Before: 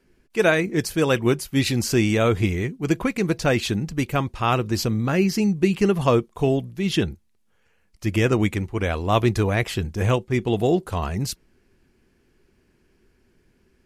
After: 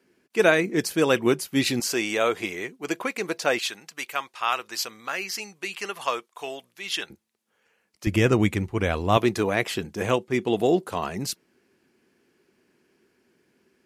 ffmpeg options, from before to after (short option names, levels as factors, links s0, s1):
-af "asetnsamples=n=441:p=0,asendcmd='1.8 highpass f 480;3.59 highpass f 1000;7.1 highpass f 260;8.07 highpass f 82;9.17 highpass f 220',highpass=210"